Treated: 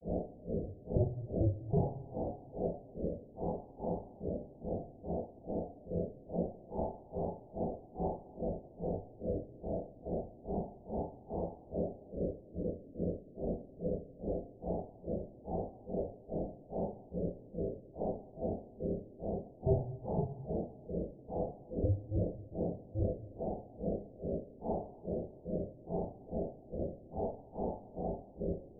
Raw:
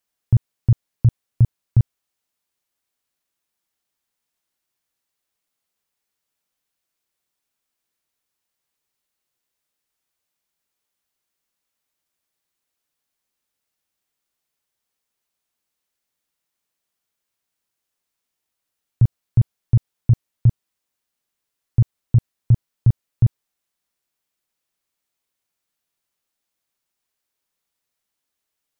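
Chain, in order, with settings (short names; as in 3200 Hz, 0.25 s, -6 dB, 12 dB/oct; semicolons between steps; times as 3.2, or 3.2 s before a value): infinite clipping; steep low-pass 690 Hz 72 dB/oct; grains 0.262 s, grains 2.4/s, pitch spread up and down by 3 st; two-slope reverb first 0.32 s, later 2.5 s, from -20 dB, DRR -3 dB; gain +4 dB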